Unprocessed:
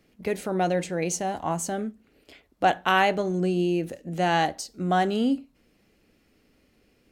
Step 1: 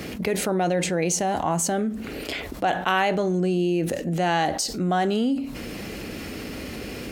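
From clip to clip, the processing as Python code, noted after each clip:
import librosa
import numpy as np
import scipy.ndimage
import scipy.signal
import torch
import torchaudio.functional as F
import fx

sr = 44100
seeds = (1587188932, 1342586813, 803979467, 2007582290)

y = scipy.signal.sosfilt(scipy.signal.butter(2, 44.0, 'highpass', fs=sr, output='sos'), x)
y = fx.env_flatten(y, sr, amount_pct=70)
y = y * librosa.db_to_amplitude(-3.5)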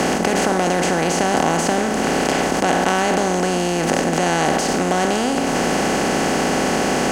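y = fx.bin_compress(x, sr, power=0.2)
y = fx.high_shelf(y, sr, hz=7500.0, db=-8.5)
y = y * librosa.db_to_amplitude(-2.5)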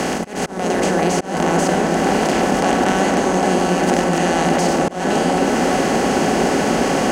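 y = fx.echo_opening(x, sr, ms=373, hz=750, octaves=1, feedback_pct=70, wet_db=0)
y = fx.auto_swell(y, sr, attack_ms=224.0)
y = y * librosa.db_to_amplitude(-2.0)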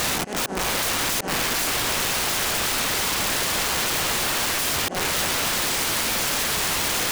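y = (np.mod(10.0 ** (19.0 / 20.0) * x + 1.0, 2.0) - 1.0) / 10.0 ** (19.0 / 20.0)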